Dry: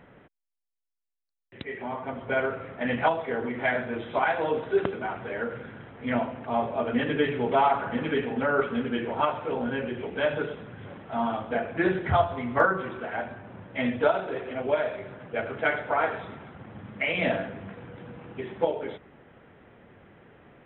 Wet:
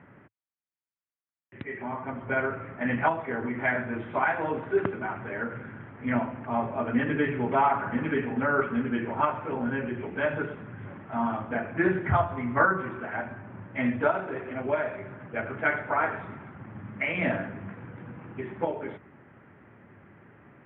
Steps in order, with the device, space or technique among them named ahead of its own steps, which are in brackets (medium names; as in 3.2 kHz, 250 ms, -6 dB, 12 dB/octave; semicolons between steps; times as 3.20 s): bass cabinet (cabinet simulation 81–2300 Hz, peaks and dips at 110 Hz +4 dB, 480 Hz -8 dB, 710 Hz -5 dB); trim +1.5 dB